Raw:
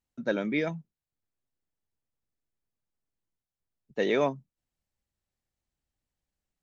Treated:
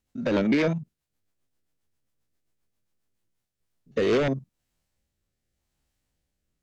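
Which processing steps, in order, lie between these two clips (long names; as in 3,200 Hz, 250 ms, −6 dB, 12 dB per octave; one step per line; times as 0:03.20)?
spectrum averaged block by block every 50 ms
sine wavefolder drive 8 dB, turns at −15.5 dBFS
rotating-speaker cabinet horn 7.5 Hz, later 0.85 Hz, at 0:02.92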